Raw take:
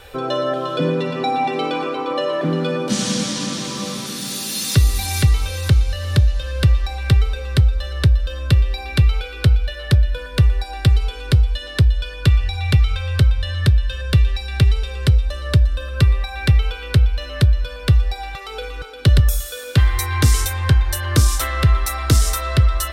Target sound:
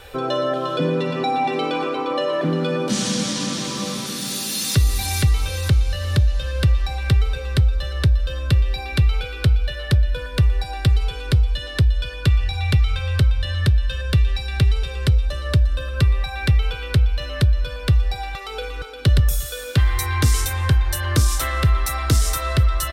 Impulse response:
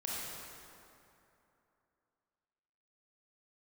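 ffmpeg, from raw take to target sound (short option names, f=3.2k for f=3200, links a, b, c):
-filter_complex "[0:a]asplit=2[a][b];[b]alimiter=limit=-15dB:level=0:latency=1,volume=-2dB[c];[a][c]amix=inputs=2:normalize=0,aecho=1:1:249:0.0668,volume=-5dB"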